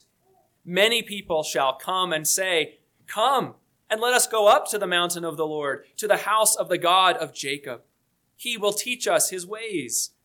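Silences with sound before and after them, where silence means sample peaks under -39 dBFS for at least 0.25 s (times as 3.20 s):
2.69–3.09 s
3.52–3.90 s
7.77–8.40 s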